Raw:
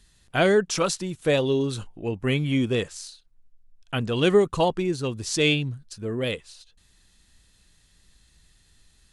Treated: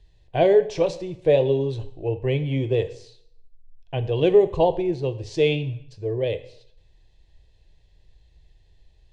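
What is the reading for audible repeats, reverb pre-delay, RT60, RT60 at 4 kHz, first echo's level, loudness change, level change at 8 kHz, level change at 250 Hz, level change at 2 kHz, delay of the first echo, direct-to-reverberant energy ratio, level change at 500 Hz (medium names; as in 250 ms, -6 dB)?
no echo, 5 ms, 0.65 s, 0.65 s, no echo, +1.5 dB, under -15 dB, -2.0 dB, -7.0 dB, no echo, 10.5 dB, +4.0 dB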